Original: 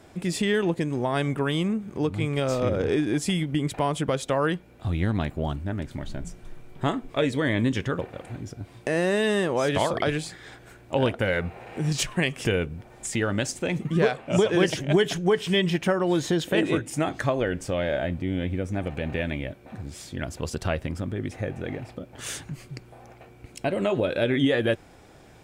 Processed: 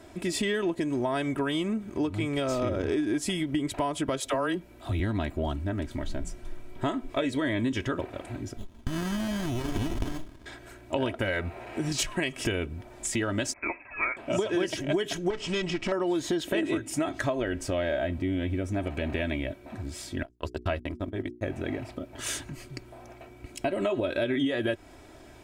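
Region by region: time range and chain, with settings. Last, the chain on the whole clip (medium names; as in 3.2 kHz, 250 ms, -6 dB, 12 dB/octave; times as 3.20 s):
4.20–5.00 s: treble shelf 9.6 kHz +6.5 dB + phase dispersion lows, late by 47 ms, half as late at 410 Hz
8.57–10.46 s: distance through air 330 m + frequency inversion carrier 3.6 kHz + sliding maximum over 65 samples
13.53–14.17 s: high-pass 540 Hz 24 dB/octave + frequency inversion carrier 2.9 kHz
15.30–15.92 s: comb filter that takes the minimum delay 0.38 ms + low-pass 7.5 kHz 24 dB/octave + compression 3:1, threshold -23 dBFS
20.23–21.44 s: gate -30 dBFS, range -55 dB + hum notches 60/120/180/240/300/360/420 Hz
whole clip: comb 3.1 ms, depth 59%; compression 4:1, threshold -25 dBFS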